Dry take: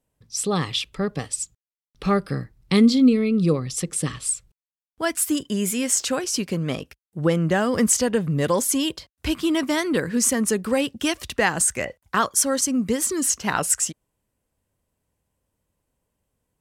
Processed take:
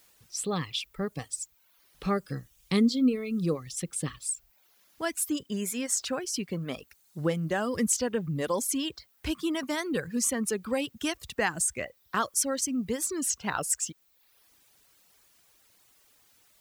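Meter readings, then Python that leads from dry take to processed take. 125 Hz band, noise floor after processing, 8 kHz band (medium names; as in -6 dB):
-8.5 dB, -66 dBFS, -7.5 dB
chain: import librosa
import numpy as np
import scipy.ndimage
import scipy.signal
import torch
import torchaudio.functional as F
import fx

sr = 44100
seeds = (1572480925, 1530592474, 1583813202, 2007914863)

y = fx.dmg_noise_colour(x, sr, seeds[0], colour='white', level_db=-54.0)
y = fx.dereverb_blind(y, sr, rt60_s=0.85)
y = y * librosa.db_to_amplitude(-7.0)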